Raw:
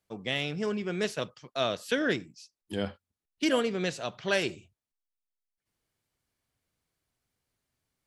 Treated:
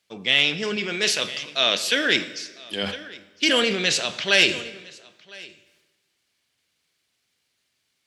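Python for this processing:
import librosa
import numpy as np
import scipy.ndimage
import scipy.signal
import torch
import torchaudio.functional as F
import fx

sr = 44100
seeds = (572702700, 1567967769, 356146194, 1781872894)

y = fx.low_shelf(x, sr, hz=150.0, db=-9.0, at=(0.76, 2.83))
y = y + 10.0 ** (-23.5 / 20.0) * np.pad(y, (int(1007 * sr / 1000.0), 0))[:len(y)]
y = fx.transient(y, sr, attack_db=-2, sustain_db=8)
y = fx.weighting(y, sr, curve='D')
y = fx.rev_plate(y, sr, seeds[0], rt60_s=1.3, hf_ratio=0.8, predelay_ms=0, drr_db=12.0)
y = y * librosa.db_to_amplitude(3.5)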